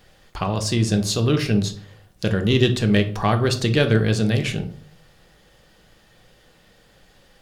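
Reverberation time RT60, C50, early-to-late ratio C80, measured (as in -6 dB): 0.60 s, 12.5 dB, 17.0 dB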